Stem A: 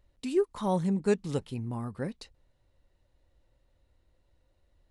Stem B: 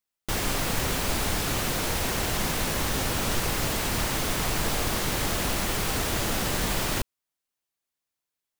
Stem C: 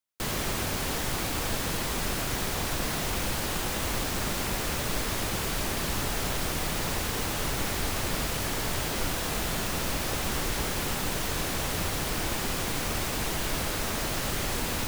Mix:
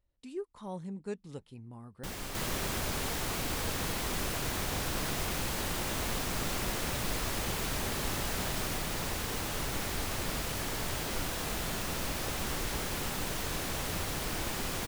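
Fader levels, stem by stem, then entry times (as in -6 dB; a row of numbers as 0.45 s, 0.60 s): -12.5 dB, -13.0 dB, -5.0 dB; 0.00 s, 1.75 s, 2.15 s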